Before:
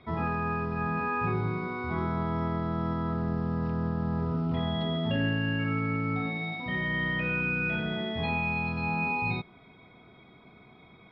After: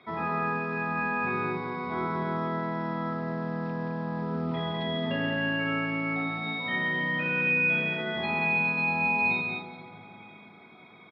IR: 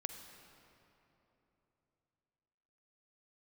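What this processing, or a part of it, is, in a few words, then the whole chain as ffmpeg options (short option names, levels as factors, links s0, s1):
stadium PA: -filter_complex "[0:a]highpass=200,equalizer=f=2000:t=o:w=2.7:g=5,bandreject=f=2900:w=12,aecho=1:1:174.9|212.8:0.355|0.447[s0];[1:a]atrim=start_sample=2205[s1];[s0][s1]afir=irnorm=-1:irlink=0"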